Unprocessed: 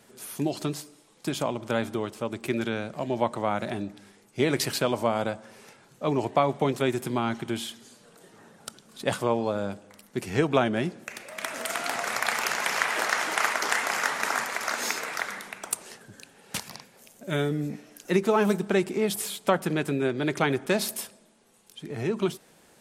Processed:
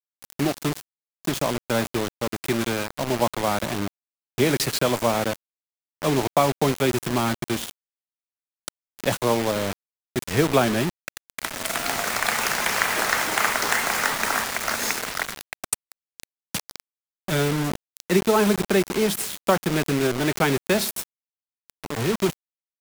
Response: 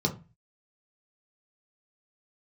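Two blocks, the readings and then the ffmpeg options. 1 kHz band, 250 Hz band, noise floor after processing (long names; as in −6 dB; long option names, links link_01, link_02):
+3.5 dB, +3.5 dB, below −85 dBFS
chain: -filter_complex "[0:a]lowshelf=frequency=67:gain=9.5,acrossover=split=240|950|3500[link_01][link_02][link_03][link_04];[link_01]acompressor=mode=upward:threshold=-38dB:ratio=2.5[link_05];[link_05][link_02][link_03][link_04]amix=inputs=4:normalize=0,acrusher=bits=4:mix=0:aa=0.000001,volume=3dB"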